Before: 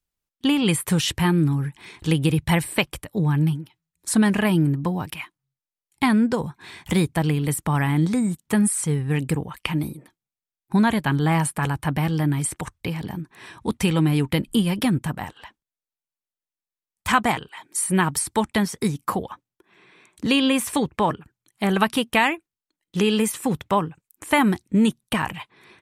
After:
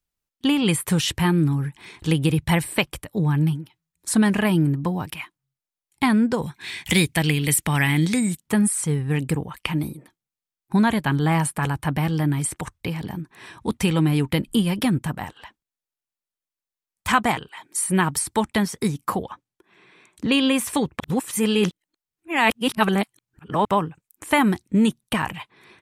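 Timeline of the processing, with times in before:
6.42–8.39 s: resonant high shelf 1.6 kHz +8 dB, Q 1.5
19.22–20.32 s: low-pass that closes with the level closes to 2.8 kHz, closed at -22.5 dBFS
21.00–23.65 s: reverse

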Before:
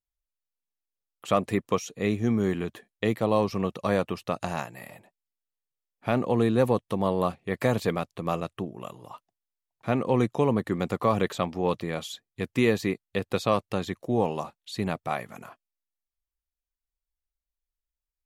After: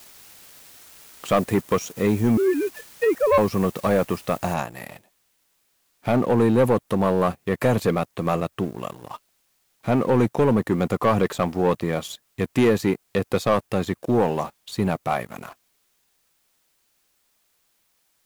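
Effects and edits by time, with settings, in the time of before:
2.37–3.38 s: formants replaced by sine waves
4.54 s: noise floor step -50 dB -64 dB
whole clip: dynamic bell 3.7 kHz, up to -5 dB, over -46 dBFS, Q 0.74; waveshaping leveller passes 2

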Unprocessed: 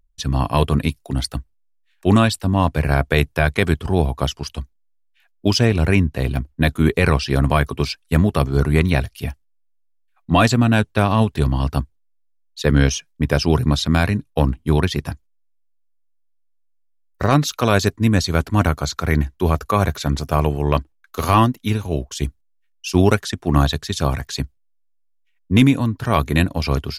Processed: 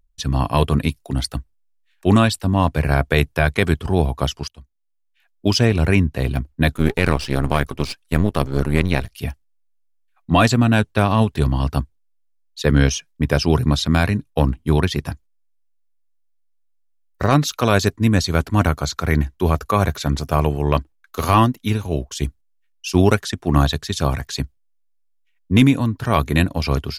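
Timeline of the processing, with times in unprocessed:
4.48–5.55 s: fade in, from -21 dB
6.76–9.09 s: partial rectifier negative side -12 dB

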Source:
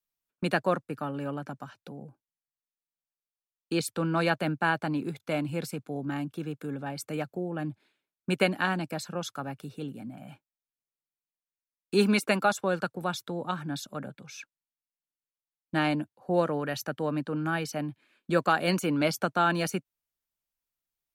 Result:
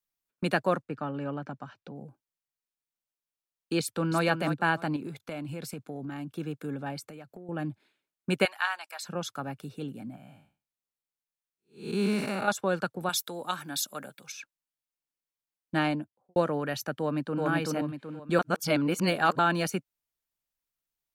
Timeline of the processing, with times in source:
0.82–1.96 s: distance through air 110 m
3.80–4.22 s: echo throw 310 ms, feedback 20%, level -8 dB
4.96–6.32 s: compression, threshold -33 dBFS
6.99–7.49 s: compression 10:1, threshold -41 dBFS
8.45–9.04 s: high-pass 850 Hz 24 dB/octave
10.16–12.48 s: spectral blur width 227 ms
13.09–14.32 s: RIAA curve recording
15.77–16.36 s: studio fade out
16.99–17.43 s: echo throw 380 ms, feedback 40%, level -0.5 dB
18.39–19.39 s: reverse

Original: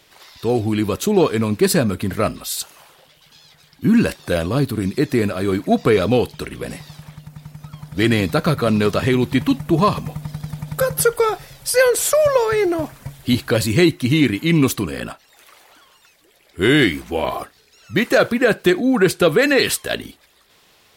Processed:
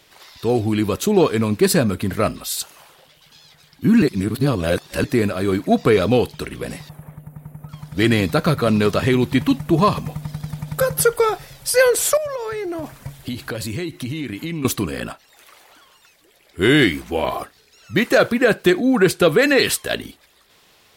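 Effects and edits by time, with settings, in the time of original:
4.02–5.04 s: reverse
6.89–7.69 s: FFT filter 160 Hz 0 dB, 440 Hz +5 dB, 2.1 kHz -6 dB, 4.9 kHz -26 dB, 11 kHz +1 dB
12.17–14.65 s: compression 10:1, threshold -23 dBFS

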